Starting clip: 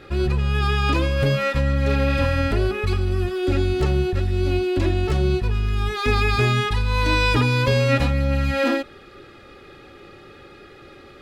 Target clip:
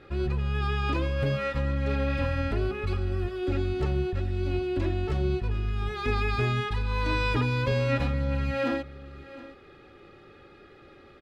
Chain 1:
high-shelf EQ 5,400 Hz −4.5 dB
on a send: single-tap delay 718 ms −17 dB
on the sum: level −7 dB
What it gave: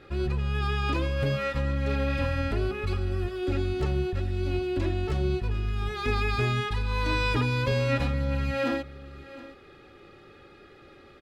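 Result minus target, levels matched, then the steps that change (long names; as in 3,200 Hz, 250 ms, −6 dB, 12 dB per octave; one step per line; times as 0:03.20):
8,000 Hz band +4.0 dB
change: high-shelf EQ 5,400 Hz −11.5 dB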